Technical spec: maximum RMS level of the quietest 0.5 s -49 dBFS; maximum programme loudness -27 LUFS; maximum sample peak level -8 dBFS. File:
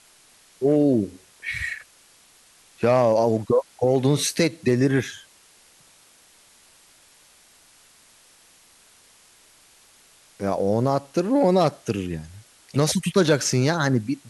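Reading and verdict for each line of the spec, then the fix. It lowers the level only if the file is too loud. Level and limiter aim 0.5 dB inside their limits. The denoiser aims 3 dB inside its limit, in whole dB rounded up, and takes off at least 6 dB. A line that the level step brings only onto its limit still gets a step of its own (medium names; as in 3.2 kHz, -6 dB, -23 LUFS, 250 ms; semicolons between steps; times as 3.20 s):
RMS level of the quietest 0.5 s -55 dBFS: pass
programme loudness -22.0 LUFS: fail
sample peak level -6.5 dBFS: fail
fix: trim -5.5 dB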